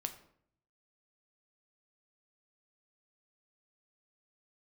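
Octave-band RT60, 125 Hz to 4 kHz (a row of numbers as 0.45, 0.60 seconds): 1.0, 0.80, 0.70, 0.60, 0.50, 0.45 seconds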